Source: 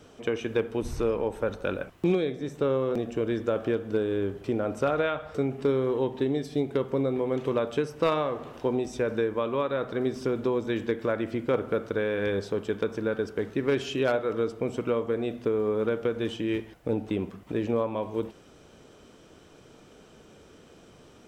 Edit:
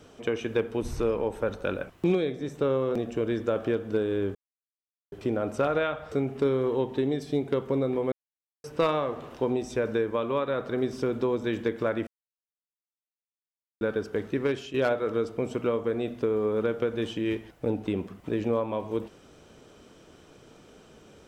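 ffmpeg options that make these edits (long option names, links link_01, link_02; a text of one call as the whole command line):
ffmpeg -i in.wav -filter_complex "[0:a]asplit=7[link_01][link_02][link_03][link_04][link_05][link_06][link_07];[link_01]atrim=end=4.35,asetpts=PTS-STARTPTS,afade=type=out:start_time=4.346:duration=0.004:curve=hsin,apad=pad_dur=0.77[link_08];[link_02]atrim=start=4.35:end=7.35,asetpts=PTS-STARTPTS,afade=type=in:duration=0.004:curve=hsin,afade=type=out:start_time=2.996:duration=0.004:curve=hsin[link_09];[link_03]atrim=start=7.35:end=7.87,asetpts=PTS-STARTPTS,volume=0[link_10];[link_04]atrim=start=7.87:end=11.3,asetpts=PTS-STARTPTS,afade=type=in:duration=0.004:curve=hsin,afade=type=out:start_time=3.426:duration=0.004:curve=hsin[link_11];[link_05]atrim=start=11.3:end=13.04,asetpts=PTS-STARTPTS,volume=0[link_12];[link_06]atrim=start=13.04:end=13.97,asetpts=PTS-STARTPTS,afade=type=in:duration=0.004:curve=hsin,afade=type=out:start_time=0.58:duration=0.35:silence=0.281838[link_13];[link_07]atrim=start=13.97,asetpts=PTS-STARTPTS,afade=type=in:duration=0.004:curve=hsin:silence=0.281838[link_14];[link_08][link_09][link_10][link_11][link_12][link_13][link_14]concat=n=7:v=0:a=1" out.wav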